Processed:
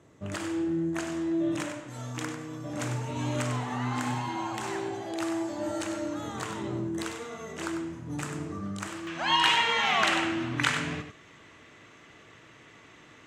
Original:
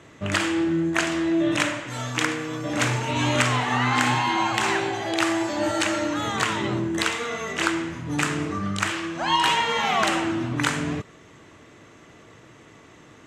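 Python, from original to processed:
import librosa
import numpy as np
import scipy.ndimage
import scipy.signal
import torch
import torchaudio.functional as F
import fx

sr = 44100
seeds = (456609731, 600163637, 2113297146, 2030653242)

y = fx.peak_eq(x, sr, hz=2500.0, db=fx.steps((0.0, -9.0), (9.07, 7.5)), octaves=2.3)
y = y + 10.0 ** (-9.0 / 20.0) * np.pad(y, (int(97 * sr / 1000.0), 0))[:len(y)]
y = y * 10.0 ** (-7.5 / 20.0)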